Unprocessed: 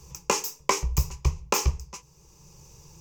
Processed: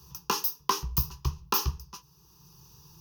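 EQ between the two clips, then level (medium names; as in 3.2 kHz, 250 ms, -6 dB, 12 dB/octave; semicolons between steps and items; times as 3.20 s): high-pass 120 Hz 6 dB/octave; treble shelf 8.9 kHz +10.5 dB; static phaser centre 2.2 kHz, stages 6; 0.0 dB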